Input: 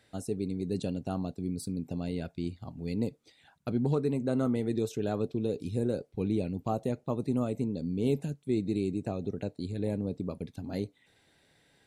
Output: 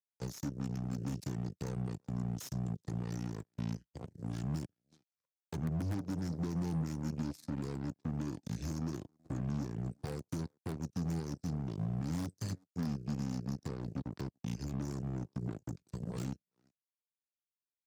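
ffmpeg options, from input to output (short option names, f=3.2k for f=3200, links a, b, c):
-filter_complex "[0:a]asplit=2[a][b];[b]aeval=exprs='(mod(7.94*val(0)+1,2)-1)/7.94':c=same,volume=-10dB[c];[a][c]amix=inputs=2:normalize=0,asplit=2[d][e];[e]adelay=250,highpass=300,lowpass=3.4k,asoftclip=type=hard:threshold=-23.5dB,volume=-17dB[f];[d][f]amix=inputs=2:normalize=0,acompressor=threshold=-31dB:ratio=3,aeval=exprs='0.0891*(cos(1*acos(clip(val(0)/0.0891,-1,1)))-cos(1*PI/2))+0.00355*(cos(3*acos(clip(val(0)/0.0891,-1,1)))-cos(3*PI/2))+0.0112*(cos(7*acos(clip(val(0)/0.0891,-1,1)))-cos(7*PI/2))':c=same,asetrate=29282,aresample=44100,aexciter=amount=14.5:drive=4.2:freq=4.3k,volume=33.5dB,asoftclip=hard,volume=-33.5dB,highpass=100,bass=f=250:g=6,treble=f=4k:g=-10,acrossover=split=270[g][h];[h]acompressor=threshold=-42dB:ratio=6[i];[g][i]amix=inputs=2:normalize=0,volume=1dB"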